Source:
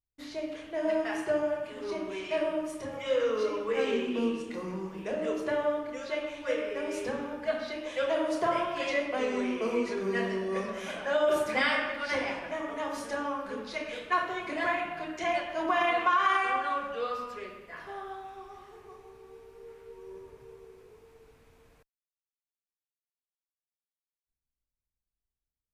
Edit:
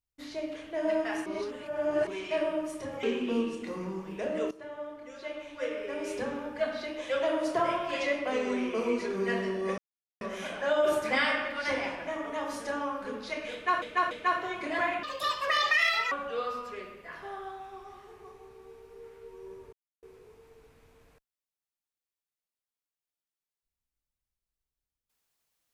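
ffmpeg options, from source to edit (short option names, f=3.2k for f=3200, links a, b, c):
-filter_complex "[0:a]asplit=12[a][b][c][d][e][f][g][h][i][j][k][l];[a]atrim=end=1.262[m];[b]atrim=start=1.258:end=2.072,asetpts=PTS-STARTPTS,areverse[n];[c]atrim=start=2.068:end=3.032[o];[d]atrim=start=3.898:end=5.38,asetpts=PTS-STARTPTS,afade=t=out:st=1.478:d=0.004:c=hsin:silence=0.141254[p];[e]atrim=start=5.38:end=10.65,asetpts=PTS-STARTPTS,afade=t=in:d=1.81:silence=0.141254,afade=t=out:st=5.266:d=0.004:c=hsin,apad=pad_dur=0.43[q];[f]atrim=start=10.65:end=14.262,asetpts=PTS-STARTPTS,afade=t=in:d=0.004:c=hsin[r];[g]atrim=start=13.968:end=14.262[s];[h]atrim=start=13.968:end=14.894[t];[i]atrim=start=14.89:end=16.76,asetpts=PTS-STARTPTS,asetrate=75852,aresample=44100[u];[j]atrim=start=16.756:end=20.37,asetpts=PTS-STARTPTS,afade=t=out:st=3.61:d=0.004:c=hsin[v];[k]atrim=start=20.37:end=20.67,asetpts=PTS-STARTPTS,volume=0[w];[l]atrim=start=20.67,asetpts=PTS-STARTPTS,afade=t=in:d=0.004:c=hsin[x];[m][n]acrossfade=d=0.004:c1=hsin:c2=hsin[y];[y][o]acrossfade=d=0.004:c1=hsin:c2=hsin[z];[p][q][r]concat=n=3:v=0:a=1[aa];[z][aa]acrossfade=d=0.004:c1=hsin:c2=hsin[ab];[ab][s]acrossfade=d=0.004:c1=hsin:c2=hsin[ac];[ac][t]acrossfade=d=0.004:c1=hsin:c2=hsin[ad];[ad][u]acrossfade=d=0.004:c1=hsin:c2=hsin[ae];[v][w][x]concat=n=3:v=0:a=1[af];[ae][af]acrossfade=d=0.004:c1=hsin:c2=hsin"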